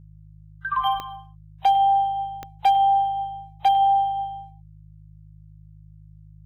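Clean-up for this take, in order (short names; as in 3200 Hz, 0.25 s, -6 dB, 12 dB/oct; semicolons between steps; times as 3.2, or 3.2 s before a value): clip repair -12.5 dBFS; de-click; de-hum 52 Hz, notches 3; inverse comb 0.103 s -16 dB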